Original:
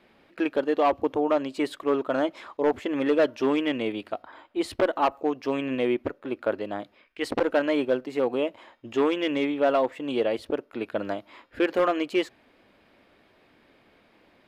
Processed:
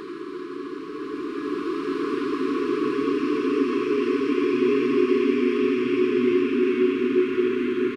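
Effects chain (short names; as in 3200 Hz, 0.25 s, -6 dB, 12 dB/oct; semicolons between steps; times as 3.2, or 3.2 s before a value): reverse delay 0.633 s, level -12 dB; RIAA curve recording; treble ducked by the level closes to 580 Hz, closed at -20.5 dBFS; bell 320 Hz +10 dB 3 oct; time stretch by phase-locked vocoder 0.55×; hard clip -12.5 dBFS, distortion -20 dB; Paulstretch 8.5×, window 1.00 s, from 2.68; brick-wall FIR band-stop 440–1000 Hz; speakerphone echo 0.13 s, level -17 dB; bloom reverb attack 1.95 s, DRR -8.5 dB; gain -6 dB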